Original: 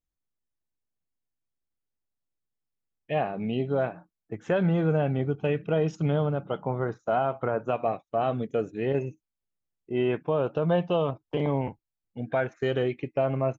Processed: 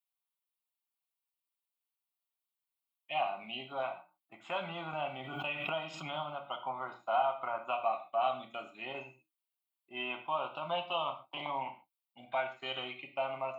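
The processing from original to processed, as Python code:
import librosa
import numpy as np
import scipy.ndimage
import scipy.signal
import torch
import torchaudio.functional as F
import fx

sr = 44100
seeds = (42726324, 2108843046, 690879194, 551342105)

y = scipy.signal.sosfilt(scipy.signal.butter(2, 680.0, 'highpass', fs=sr, output='sos'), x)
y = fx.high_shelf(y, sr, hz=4600.0, db=6.0)
y = fx.fixed_phaser(y, sr, hz=1700.0, stages=6)
y = fx.rev_gated(y, sr, seeds[0], gate_ms=160, shape='falling', drr_db=4.5)
y = fx.pre_swell(y, sr, db_per_s=44.0, at=(4.93, 6.26))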